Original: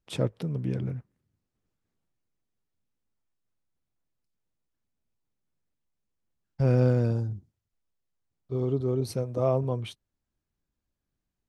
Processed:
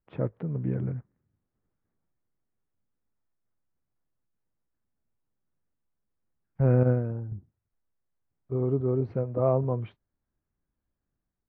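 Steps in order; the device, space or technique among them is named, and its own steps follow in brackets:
0:06.83–0:07.32: noise gate −21 dBFS, range −7 dB
action camera in a waterproof case (low-pass filter 1,900 Hz 24 dB per octave; automatic gain control gain up to 3.5 dB; level −2.5 dB; AAC 48 kbit/s 22,050 Hz)

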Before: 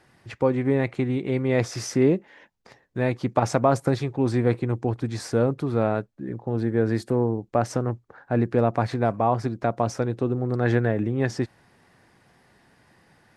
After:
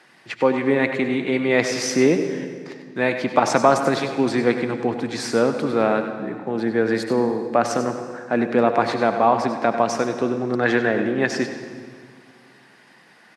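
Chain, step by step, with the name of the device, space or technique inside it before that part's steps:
PA in a hall (high-pass filter 170 Hz 24 dB per octave; parametric band 2,700 Hz +8 dB 2.9 octaves; single-tap delay 97 ms −11 dB; convolution reverb RT60 2.0 s, pre-delay 67 ms, DRR 8.5 dB)
level +2 dB

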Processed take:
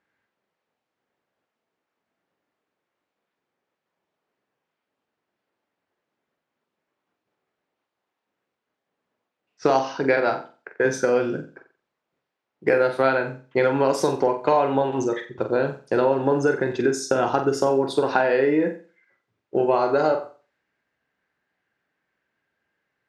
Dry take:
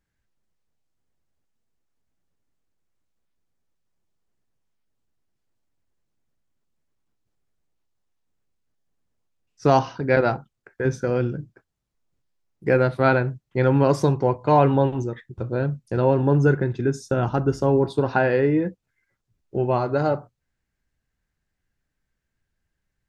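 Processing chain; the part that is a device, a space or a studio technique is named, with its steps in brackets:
high-pass filter 410 Hz 12 dB per octave
ASMR close-microphone chain (low-shelf EQ 200 Hz +6 dB; downward compressor, threshold −26 dBFS, peak gain reduction 13 dB; high-shelf EQ 6,800 Hz +5 dB)
low-pass that shuts in the quiet parts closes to 2,500 Hz, open at −27.5 dBFS
flutter between parallel walls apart 7.7 metres, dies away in 0.36 s
level +9 dB

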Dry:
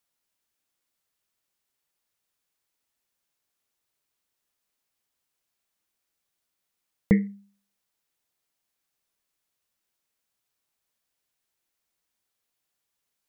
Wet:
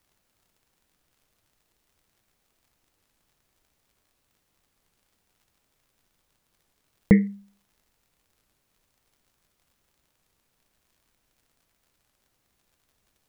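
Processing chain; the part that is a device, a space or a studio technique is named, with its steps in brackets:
warped LP (wow of a warped record 33 1/3 rpm, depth 250 cents; surface crackle; pink noise bed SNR 40 dB)
level +4 dB

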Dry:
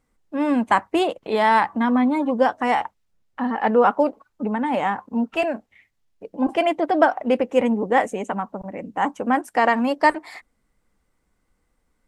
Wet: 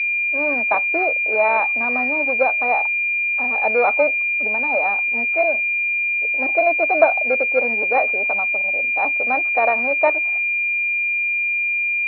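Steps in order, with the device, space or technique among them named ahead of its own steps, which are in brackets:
toy sound module (linearly interpolated sample-rate reduction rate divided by 6×; switching amplifier with a slow clock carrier 2,400 Hz; loudspeaker in its box 620–4,700 Hz, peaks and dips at 630 Hz +6 dB, 980 Hz −7 dB, 2,200 Hz +8 dB, 3,300 Hz −4 dB)
level +3 dB

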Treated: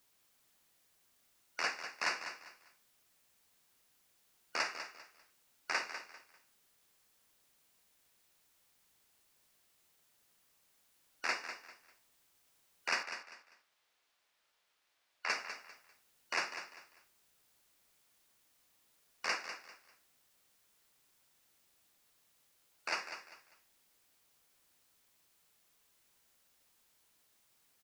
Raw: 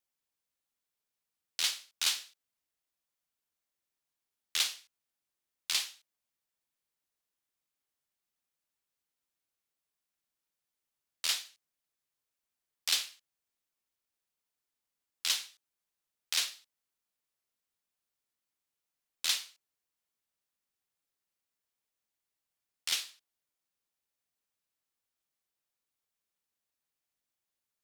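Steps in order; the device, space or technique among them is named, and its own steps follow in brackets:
split-band scrambled radio (band-splitting scrambler in four parts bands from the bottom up 2413; band-pass filter 340–3,100 Hz; white noise bed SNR 25 dB)
0:13.03–0:15.29: three-way crossover with the lows and the highs turned down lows −13 dB, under 470 Hz, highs −13 dB, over 5,000 Hz
repeating echo 198 ms, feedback 28%, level −10 dB

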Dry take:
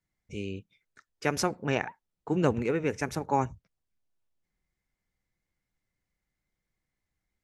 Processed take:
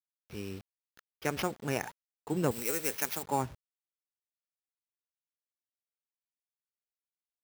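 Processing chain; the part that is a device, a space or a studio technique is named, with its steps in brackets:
early 8-bit sampler (sample-rate reduction 8,100 Hz, jitter 0%; bit reduction 8 bits)
0:02.51–0:03.23: RIAA equalisation recording
level −4.5 dB

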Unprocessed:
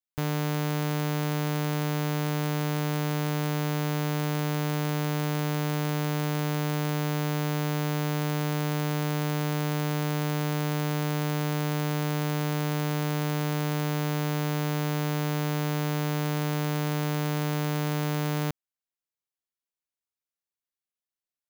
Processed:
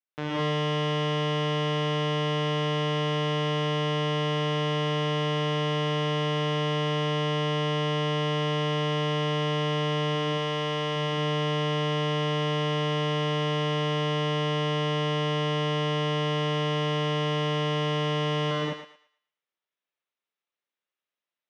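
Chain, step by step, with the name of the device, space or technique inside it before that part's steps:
0:10.15–0:10.96: low-shelf EQ 170 Hz −9 dB
kitchen radio (loudspeaker in its box 220–4,500 Hz, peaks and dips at 230 Hz −7 dB, 750 Hz −3 dB, 4,500 Hz −9 dB)
feedback echo with a high-pass in the loop 113 ms, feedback 31%, high-pass 600 Hz, level −7.5 dB
reverb whose tail is shaped and stops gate 240 ms rising, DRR −6.5 dB

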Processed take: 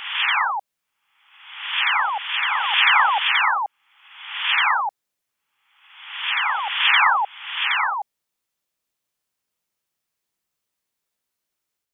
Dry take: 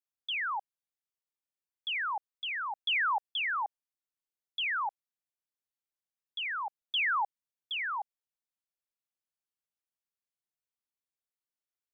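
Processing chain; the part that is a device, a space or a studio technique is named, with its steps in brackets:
reverse reverb (reversed playback; convolution reverb RT60 1.0 s, pre-delay 73 ms, DRR −4 dB; reversed playback)
level +8.5 dB

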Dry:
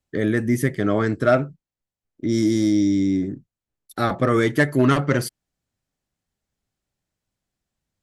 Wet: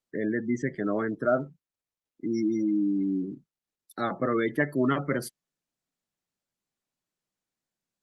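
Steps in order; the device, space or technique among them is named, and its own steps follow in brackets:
noise-suppressed video call (high-pass filter 150 Hz 24 dB per octave; gate on every frequency bin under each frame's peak −25 dB strong; level −7 dB; Opus 24 kbit/s 48,000 Hz)

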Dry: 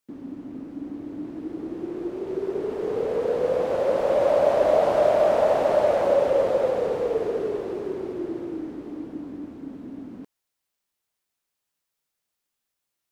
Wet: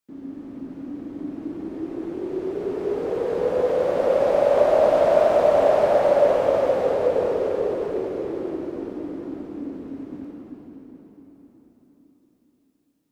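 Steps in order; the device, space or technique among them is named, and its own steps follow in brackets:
cathedral (convolution reverb RT60 4.8 s, pre-delay 8 ms, DRR −4.5 dB)
level −4 dB

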